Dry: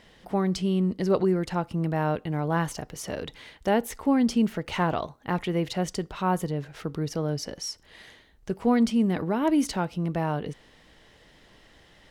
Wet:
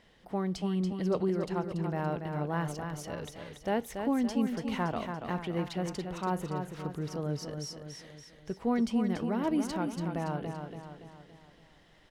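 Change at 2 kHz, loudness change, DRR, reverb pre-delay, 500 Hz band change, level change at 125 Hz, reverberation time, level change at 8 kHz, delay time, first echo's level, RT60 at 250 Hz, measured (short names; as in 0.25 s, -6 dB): -6.5 dB, -6.0 dB, none, none, -6.0 dB, -5.5 dB, none, -8.0 dB, 0.284 s, -6.5 dB, none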